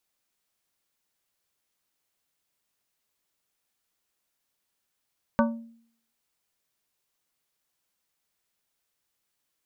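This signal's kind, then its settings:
struck glass plate, lowest mode 230 Hz, decay 0.60 s, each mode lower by 2 dB, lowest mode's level −18 dB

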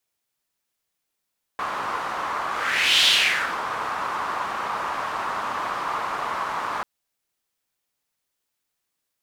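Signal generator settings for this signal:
pass-by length 5.24 s, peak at 0:01.46, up 0.61 s, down 0.58 s, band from 1,100 Hz, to 3,400 Hz, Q 3.2, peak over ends 10.5 dB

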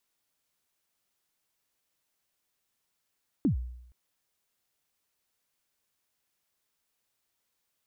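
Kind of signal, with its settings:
synth kick length 0.47 s, from 330 Hz, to 61 Hz, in 111 ms, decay 0.79 s, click off, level −19.5 dB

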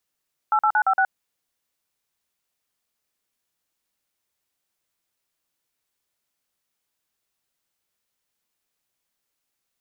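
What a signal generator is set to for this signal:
touch tones "88956", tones 70 ms, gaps 45 ms, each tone −18.5 dBFS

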